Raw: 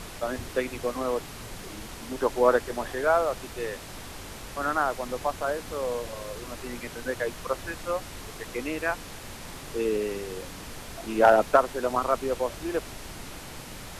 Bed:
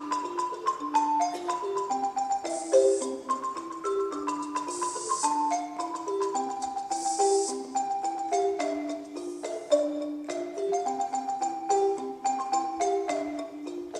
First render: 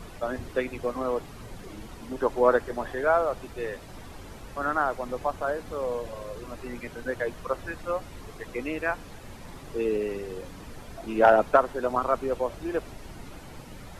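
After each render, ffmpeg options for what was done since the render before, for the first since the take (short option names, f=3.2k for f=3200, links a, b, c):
-af "afftdn=nr=10:nf=-42"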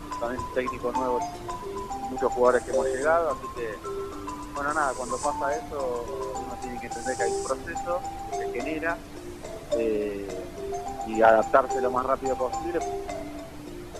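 -filter_complex "[1:a]volume=-5dB[a];[0:a][a]amix=inputs=2:normalize=0"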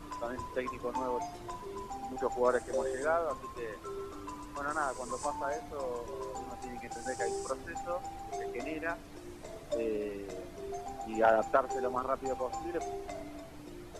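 -af "volume=-8dB"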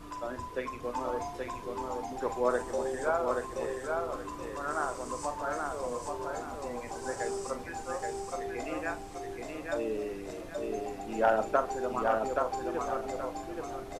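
-filter_complex "[0:a]asplit=2[a][b];[b]adelay=41,volume=-10.5dB[c];[a][c]amix=inputs=2:normalize=0,aecho=1:1:826|1652|2478|3304:0.668|0.214|0.0684|0.0219"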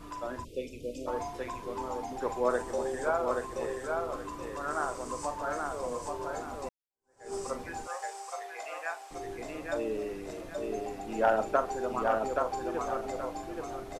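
-filter_complex "[0:a]asplit=3[a][b][c];[a]afade=t=out:st=0.43:d=0.02[d];[b]asuperstop=centerf=1200:order=12:qfactor=0.65,afade=t=in:st=0.43:d=0.02,afade=t=out:st=1.06:d=0.02[e];[c]afade=t=in:st=1.06:d=0.02[f];[d][e][f]amix=inputs=3:normalize=0,asettb=1/sr,asplit=3[g][h][i];[g]atrim=end=7.874[j];[h]atrim=start=7.87:end=9.11,asetpts=PTS-STARTPTS,afade=t=in:d=0.004:c=qsin,afade=t=out:st=1.236:d=0.004:c=qsin,highpass=f=610:w=0.5412,highpass=f=610:w=1.3066[k];[i]atrim=start=9.106[l];[j][k]acrossfade=d=0.004:c1=hsin:c2=qsin[m];[m][l]acrossfade=d=0.004:c1=qsin:c2=hsin,asplit=2[n][o];[n]atrim=end=6.69,asetpts=PTS-STARTPTS,afade=t=out:st=6.686:d=0.004:c=hsin[p];[o]atrim=start=6.69,asetpts=PTS-STARTPTS,afade=t=in:d=0.65:c=exp[q];[p][q]concat=n=2:v=0:a=1"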